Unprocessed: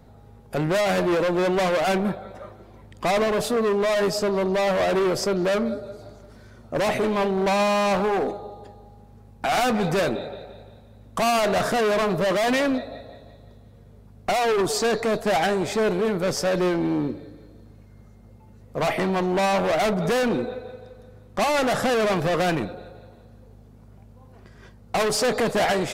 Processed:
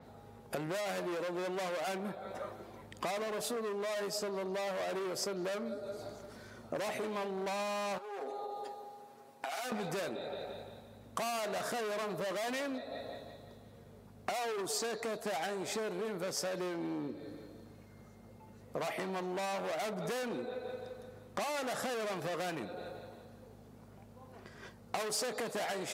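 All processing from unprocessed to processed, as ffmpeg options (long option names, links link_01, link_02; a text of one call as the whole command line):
ffmpeg -i in.wav -filter_complex "[0:a]asettb=1/sr,asplit=3[link_01][link_02][link_03];[link_01]atrim=end=7.984[link_04];[link_02]atrim=start=7.98:end=9.72,asetpts=PTS-STARTPTS,afade=type=in:duration=0.004:curve=qsin,afade=type=out:start_time=1.736:duration=0.004:curve=qsin,highpass=360,aecho=1:1:7.4:0.77,atrim=end_sample=76734,acompressor=threshold=-35dB:ratio=4:attack=3.2:release=140:knee=1:detection=peak[link_05];[link_03]atrim=start=9.716[link_06];[link_04][link_05]acrossfade=duration=0.004:curve1=hsin:curve2=qsin[link_07];[link_07][link_06]acrossfade=duration=0.004:curve1=qsin:curve2=hsin,highpass=frequency=270:poles=1,acompressor=threshold=-36dB:ratio=6,adynamicequalizer=threshold=0.00158:dfrequency=5400:dqfactor=0.7:tfrequency=5400:tqfactor=0.7:attack=5:release=100:ratio=0.375:range=2.5:mode=boostabove:tftype=highshelf" out.wav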